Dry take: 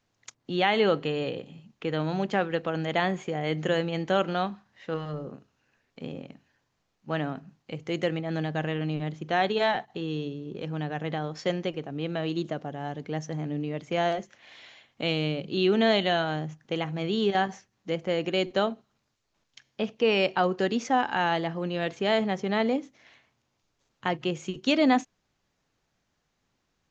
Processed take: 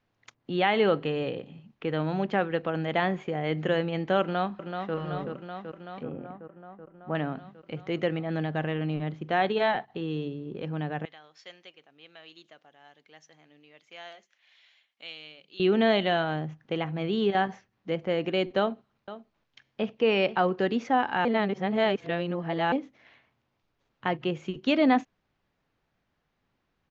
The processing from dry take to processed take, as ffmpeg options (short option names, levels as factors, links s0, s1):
-filter_complex "[0:a]asplit=2[s0][s1];[s1]afade=t=in:st=4.21:d=0.01,afade=t=out:st=4.95:d=0.01,aecho=0:1:380|760|1140|1520|1900|2280|2660|3040|3420|3800|4180|4560:0.501187|0.37589|0.281918|0.211438|0.158579|0.118934|0.0892006|0.0669004|0.0501753|0.0376315|0.0282236|0.0211677[s2];[s0][s2]amix=inputs=2:normalize=0,asettb=1/sr,asplit=3[s3][s4][s5];[s3]atrim=end=6.034[s6];[s4]atrim=start=6.03:end=7.15,asetpts=PTS-STARTPTS,afade=t=in:d=0.004:c=qsin,afade=t=out:st=1.116:d=0.004:c=qsin,lowpass=1400[s7];[s5]atrim=start=7.146[s8];[s6][s7]acrossfade=d=0.004:c1=hsin:c2=qsin[s9];[s9][s8]acrossfade=d=0.004:c1=qsin:c2=hsin,asettb=1/sr,asplit=3[s10][s11][s12];[s10]atrim=end=11.054[s13];[s11]atrim=start=11.05:end=15.6,asetpts=PTS-STARTPTS,afade=t=in:d=0.004:c=qsin,afade=t=out:st=4.546:d=0.004:c=qsin,aderivative[s14];[s12]atrim=start=15.596[s15];[s13][s14]acrossfade=d=0.004:c1=hsin:c2=qsin[s16];[s16][s15]acrossfade=d=0.004:c1=qsin:c2=hsin,asettb=1/sr,asplit=3[s17][s18][s19];[s17]atrim=end=18.594[s20];[s18]atrim=start=18.59:end=20.51,asetpts=PTS-STARTPTS,afade=t=in:d=0.004:c=qsin,afade=t=out:st=1.916:d=0.004:c=qsin,aecho=1:1:486:0.188,atrim=end_sample=84672[s21];[s19]atrim=start=20.506[s22];[s20][s21]acrossfade=d=0.004:c1=hsin:c2=qsin[s23];[s23][s22]acrossfade=d=0.004:c1=qsin:c2=hsin,asplit=3[s24][s25][s26];[s24]atrim=end=21.252[s27];[s25]atrim=start=21.248:end=22.722,asetpts=PTS-STARTPTS,areverse[s28];[s26]atrim=start=22.718[s29];[s27][s28]acrossfade=d=0.004:c1=hsin:c2=hsin[s30];[s30][s29]acrossfade=d=0.004:c1=hsin:c2=hsin,lowpass=3200"